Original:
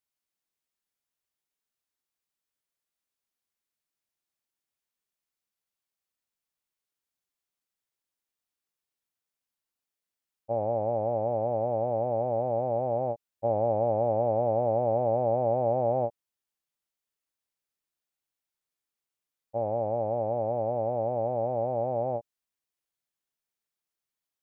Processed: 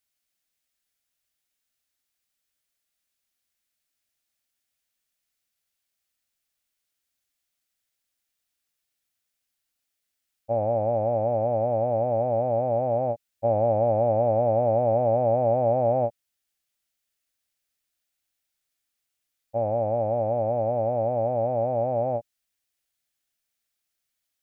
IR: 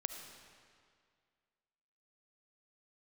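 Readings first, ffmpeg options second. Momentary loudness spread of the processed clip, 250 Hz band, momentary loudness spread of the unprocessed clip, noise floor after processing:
5 LU, +3.5 dB, 5 LU, −81 dBFS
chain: -af "equalizer=frequency=160:width_type=o:width=0.67:gain=-8,equalizer=frequency=400:width_type=o:width=0.67:gain=-9,equalizer=frequency=1000:width_type=o:width=0.67:gain=-9,volume=8.5dB"

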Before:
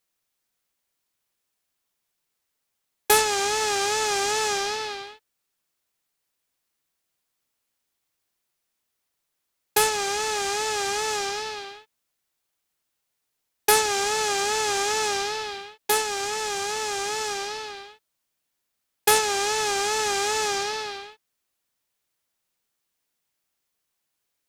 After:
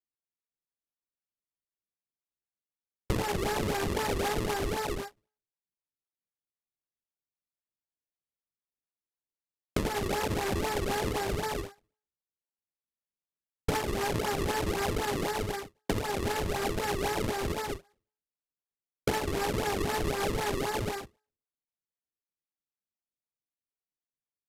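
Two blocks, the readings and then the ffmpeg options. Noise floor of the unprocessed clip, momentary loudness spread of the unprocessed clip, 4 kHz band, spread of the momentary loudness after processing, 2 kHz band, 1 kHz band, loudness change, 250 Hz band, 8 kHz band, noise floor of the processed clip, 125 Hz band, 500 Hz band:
−79 dBFS, 14 LU, −11.5 dB, 6 LU, −8.5 dB, −7.5 dB, −7.5 dB, +8.0 dB, −14.5 dB, below −85 dBFS, +14.0 dB, −4.5 dB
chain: -filter_complex "[0:a]highshelf=frequency=10000:gain=6,bandreject=frequency=60.92:width_type=h:width=4,bandreject=frequency=121.84:width_type=h:width=4,bandreject=frequency=182.76:width_type=h:width=4,bandreject=frequency=243.68:width_type=h:width=4,bandreject=frequency=304.6:width_type=h:width=4,bandreject=frequency=365.52:width_type=h:width=4,bandreject=frequency=426.44:width_type=h:width=4,bandreject=frequency=487.36:width_type=h:width=4,bandreject=frequency=548.28:width_type=h:width=4,bandreject=frequency=609.2:width_type=h:width=4,bandreject=frequency=670.12:width_type=h:width=4,bandreject=frequency=731.04:width_type=h:width=4,bandreject=frequency=791.96:width_type=h:width=4,bandreject=frequency=852.88:width_type=h:width=4,bandreject=frequency=913.8:width_type=h:width=4,bandreject=frequency=974.72:width_type=h:width=4,bandreject=frequency=1035.64:width_type=h:width=4,bandreject=frequency=1096.56:width_type=h:width=4,bandreject=frequency=1157.48:width_type=h:width=4,bandreject=frequency=1218.4:width_type=h:width=4,bandreject=frequency=1279.32:width_type=h:width=4,bandreject=frequency=1340.24:width_type=h:width=4,bandreject=frequency=1401.16:width_type=h:width=4,bandreject=frequency=1462.08:width_type=h:width=4,bandreject=frequency=1523:width_type=h:width=4,bandreject=frequency=1583.92:width_type=h:width=4,bandreject=frequency=1644.84:width_type=h:width=4,bandreject=frequency=1705.76:width_type=h:width=4,bandreject=frequency=1766.68:width_type=h:width=4,bandreject=frequency=1827.6:width_type=h:width=4,bandreject=frequency=1888.52:width_type=h:width=4,bandreject=frequency=1949.44:width_type=h:width=4,bandreject=frequency=2010.36:width_type=h:width=4,bandreject=frequency=2071.28:width_type=h:width=4,adynamicsmooth=sensitivity=6:basefreq=6500,asplit=2[link_01][link_02];[link_02]adelay=36,volume=-9dB[link_03];[link_01][link_03]amix=inputs=2:normalize=0,agate=range=-26dB:threshold=-36dB:ratio=16:detection=peak,asuperstop=centerf=3500:order=12:qfactor=1,acrusher=samples=33:mix=1:aa=0.000001:lfo=1:lforange=52.8:lforate=3.9,aresample=32000,aresample=44100,acompressor=threshold=-31dB:ratio=6,equalizer=frequency=1300:width_type=o:width=0.42:gain=-2.5,volume=4dB"

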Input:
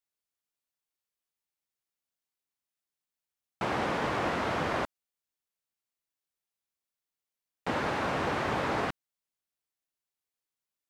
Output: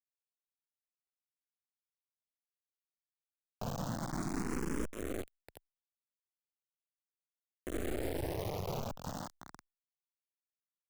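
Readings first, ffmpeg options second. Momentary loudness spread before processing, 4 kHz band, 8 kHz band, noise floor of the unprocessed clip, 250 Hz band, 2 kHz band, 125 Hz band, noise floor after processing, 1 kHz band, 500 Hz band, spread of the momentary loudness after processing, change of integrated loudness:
7 LU, −10.0 dB, +2.0 dB, below −85 dBFS, −3.5 dB, −15.0 dB, −1.5 dB, below −85 dBFS, −13.5 dB, −7.0 dB, 11 LU, −8.5 dB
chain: -filter_complex "[0:a]firequalizer=gain_entry='entry(110,0);entry(280,4);entry(520,4);entry(740,13);entry(1900,-26);entry(3700,-21);entry(6600,14)':delay=0.05:min_phase=1,afreqshift=-440,acrossover=split=160|820|5600[link_01][link_02][link_03][link_04];[link_01]acompressor=threshold=-31dB:ratio=4[link_05];[link_02]acompressor=threshold=-27dB:ratio=4[link_06];[link_03]acompressor=threshold=-55dB:ratio=4[link_07];[link_04]acompressor=threshold=-53dB:ratio=4[link_08];[link_05][link_06][link_07][link_08]amix=inputs=4:normalize=0,agate=range=-7dB:threshold=-38dB:ratio=16:detection=peak,lowshelf=frequency=180:gain=3,asplit=2[link_09][link_10];[link_10]asplit=3[link_11][link_12][link_13];[link_11]adelay=367,afreqshift=42,volume=-18dB[link_14];[link_12]adelay=734,afreqshift=84,volume=-26.2dB[link_15];[link_13]adelay=1101,afreqshift=126,volume=-34.4dB[link_16];[link_14][link_15][link_16]amix=inputs=3:normalize=0[link_17];[link_09][link_17]amix=inputs=2:normalize=0,acompressor=threshold=-32dB:ratio=16,asuperstop=centerf=710:order=4:qfactor=4.3,alimiter=level_in=10.5dB:limit=-24dB:level=0:latency=1:release=121,volume=-10.5dB,aeval=exprs='0.0188*(cos(1*acos(clip(val(0)/0.0188,-1,1)))-cos(1*PI/2))+0.000668*(cos(3*acos(clip(val(0)/0.0188,-1,1)))-cos(3*PI/2))+0.000473*(cos(6*acos(clip(val(0)/0.0188,-1,1)))-cos(6*PI/2))+0.00473*(cos(7*acos(clip(val(0)/0.0188,-1,1)))-cos(7*PI/2))':channel_layout=same,acrusher=bits=5:dc=4:mix=0:aa=0.000001,asplit=2[link_18][link_19];[link_19]afreqshift=0.38[link_20];[link_18][link_20]amix=inputs=2:normalize=1,volume=10.5dB"

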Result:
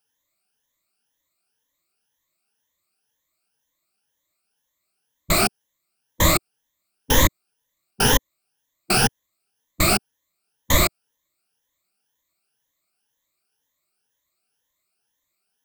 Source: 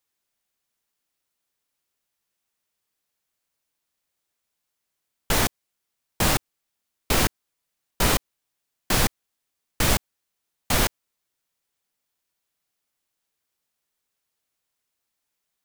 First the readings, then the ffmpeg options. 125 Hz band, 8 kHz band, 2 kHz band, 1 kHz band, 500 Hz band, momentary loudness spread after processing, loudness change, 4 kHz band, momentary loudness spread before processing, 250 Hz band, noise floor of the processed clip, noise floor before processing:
+3.5 dB, +3.5 dB, +3.5 dB, +3.5 dB, +4.0 dB, 4 LU, +3.5 dB, +3.5 dB, 4 LU, +3.5 dB, −78 dBFS, −81 dBFS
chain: -af "afftfilt=real='re*pow(10,18/40*sin(2*PI*(1.1*log(max(b,1)*sr/1024/100)/log(2)-(2)*(pts-256)/sr)))':imag='im*pow(10,18/40*sin(2*PI*(1.1*log(max(b,1)*sr/1024/100)/log(2)-(2)*(pts-256)/sr)))':win_size=1024:overlap=0.75"

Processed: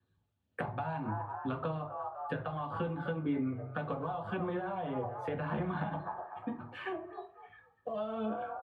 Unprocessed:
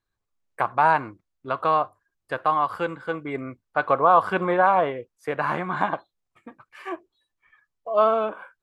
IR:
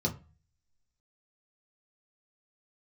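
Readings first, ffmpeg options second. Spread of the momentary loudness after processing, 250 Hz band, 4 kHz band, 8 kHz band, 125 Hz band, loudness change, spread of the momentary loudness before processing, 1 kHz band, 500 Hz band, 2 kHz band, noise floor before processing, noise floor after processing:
7 LU, −3.5 dB, −11.5 dB, can't be measured, −0.5 dB, −14.0 dB, 16 LU, −16.5 dB, −13.5 dB, −15.0 dB, −82 dBFS, −77 dBFS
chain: -filter_complex "[0:a]acrossover=split=460|1400[link_01][link_02][link_03];[link_01]asoftclip=type=tanh:threshold=-29.5dB[link_04];[link_02]asplit=4[link_05][link_06][link_07][link_08];[link_06]adelay=247,afreqshift=45,volume=-11dB[link_09];[link_07]adelay=494,afreqshift=90,volume=-21.2dB[link_10];[link_08]adelay=741,afreqshift=135,volume=-31.3dB[link_11];[link_05][link_09][link_10][link_11]amix=inputs=4:normalize=0[link_12];[link_04][link_12][link_03]amix=inputs=3:normalize=0,acompressor=threshold=-30dB:ratio=6,highpass=88,aemphasis=mode=reproduction:type=cd,bandreject=frequency=60:width_type=h:width=6,bandreject=frequency=120:width_type=h:width=6,bandreject=frequency=180:width_type=h:width=6,bandreject=frequency=240:width_type=h:width=6,bandreject=frequency=300:width_type=h:width=6,bandreject=frequency=360:width_type=h:width=6,aphaser=in_gain=1:out_gain=1:delay=1.5:decay=0.33:speed=1.8:type=sinusoidal[link_13];[1:a]atrim=start_sample=2205,asetrate=30429,aresample=44100[link_14];[link_13][link_14]afir=irnorm=-1:irlink=0,acrossover=split=210|3000[link_15][link_16][link_17];[link_15]acompressor=threshold=-32dB:ratio=4[link_18];[link_16]acompressor=threshold=-31dB:ratio=4[link_19];[link_17]acompressor=threshold=-53dB:ratio=4[link_20];[link_18][link_19][link_20]amix=inputs=3:normalize=0,adynamicequalizer=threshold=0.00178:dfrequency=4100:dqfactor=0.7:tfrequency=4100:tqfactor=0.7:attack=5:release=100:ratio=0.375:range=3.5:mode=cutabove:tftype=highshelf,volume=-5.5dB"

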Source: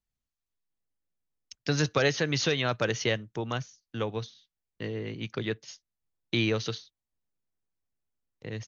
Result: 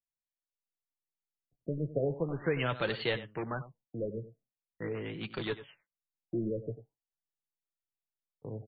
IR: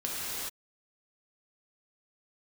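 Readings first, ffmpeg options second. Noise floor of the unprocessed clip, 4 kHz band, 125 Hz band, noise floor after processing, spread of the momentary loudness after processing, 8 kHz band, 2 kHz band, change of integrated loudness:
below −85 dBFS, −10.5 dB, −5.5 dB, below −85 dBFS, 14 LU, can't be measured, −7.5 dB, −6.0 dB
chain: -filter_complex "[0:a]agate=range=-15dB:threshold=-56dB:ratio=16:detection=peak,lowshelf=frequency=160:gain=-4.5,asplit=2[link_01][link_02];[link_02]aeval=exprs='(mod(25.1*val(0)+1,2)-1)/25.1':channel_layout=same,volume=-6dB[link_03];[link_01][link_03]amix=inputs=2:normalize=0,flanger=delay=4.7:depth=3.1:regen=51:speed=1.7:shape=triangular,aecho=1:1:95:0.188,afftfilt=real='re*lt(b*sr/1024,630*pow(4700/630,0.5+0.5*sin(2*PI*0.42*pts/sr)))':imag='im*lt(b*sr/1024,630*pow(4700/630,0.5+0.5*sin(2*PI*0.42*pts/sr)))':win_size=1024:overlap=0.75"

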